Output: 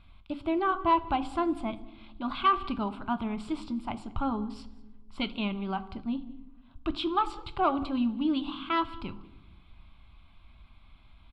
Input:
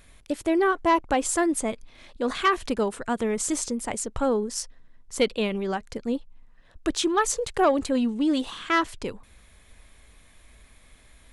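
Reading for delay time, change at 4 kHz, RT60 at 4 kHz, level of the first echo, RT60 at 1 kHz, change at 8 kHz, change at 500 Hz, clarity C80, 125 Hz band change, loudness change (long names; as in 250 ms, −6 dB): 194 ms, −5.5 dB, 0.75 s, −23.5 dB, 0.85 s, below −30 dB, −10.5 dB, 17.5 dB, −1.0 dB, −5.0 dB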